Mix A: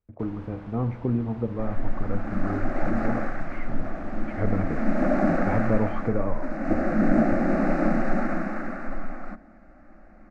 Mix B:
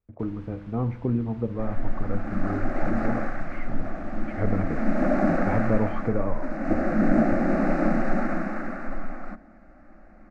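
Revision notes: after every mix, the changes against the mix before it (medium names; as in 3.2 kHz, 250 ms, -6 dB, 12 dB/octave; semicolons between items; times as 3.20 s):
first sound: add peaking EQ 590 Hz -11.5 dB 2.1 oct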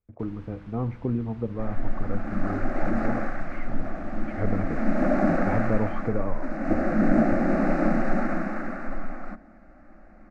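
speech: send -6.0 dB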